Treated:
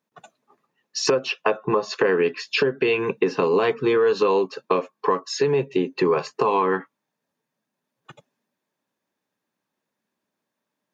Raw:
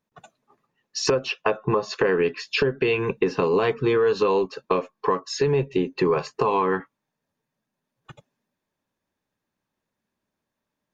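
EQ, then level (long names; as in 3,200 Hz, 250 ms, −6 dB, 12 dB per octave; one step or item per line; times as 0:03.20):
high-pass filter 180 Hz 12 dB per octave
+1.5 dB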